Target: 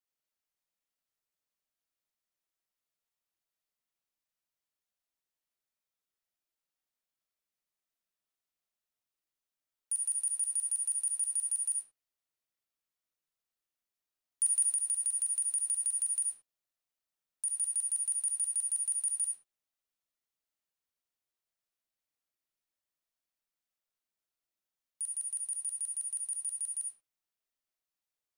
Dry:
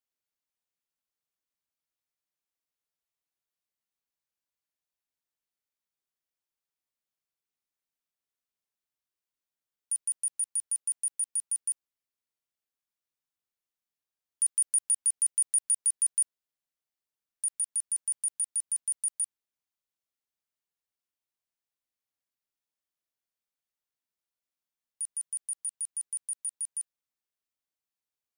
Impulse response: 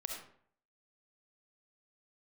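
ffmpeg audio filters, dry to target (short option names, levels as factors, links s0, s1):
-filter_complex "[1:a]atrim=start_sample=2205,afade=t=out:st=0.24:d=0.01,atrim=end_sample=11025[s0];[0:a][s0]afir=irnorm=-1:irlink=0,asettb=1/sr,asplit=3[s1][s2][s3];[s1]atrim=end=14.704[s4];[s2]atrim=start=14.7:end=17.61,asetpts=PTS-STARTPTS,afade=t=in:d=0.004:c=qsin,afade=t=out:st=2.906:d=0.004:c=qsin,acompressor=threshold=0.0355:ratio=6[s5];[s3]atrim=start=17.606[s6];[s4][s5]acrossfade=d=0.004:c1=hsin:c2=qsin[s7];[s7][s6]acrossfade=d=0.004:c1=qsin:c2=hsin"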